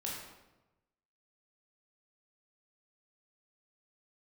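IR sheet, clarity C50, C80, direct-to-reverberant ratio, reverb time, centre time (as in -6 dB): 1.0 dB, 3.5 dB, -4.5 dB, 1.0 s, 63 ms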